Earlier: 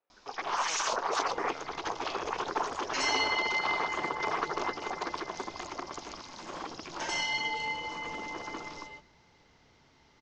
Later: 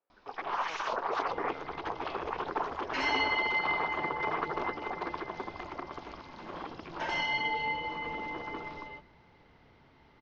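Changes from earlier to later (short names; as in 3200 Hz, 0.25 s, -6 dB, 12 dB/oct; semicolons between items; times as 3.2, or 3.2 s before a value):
second sound +4.0 dB; master: add air absorption 300 m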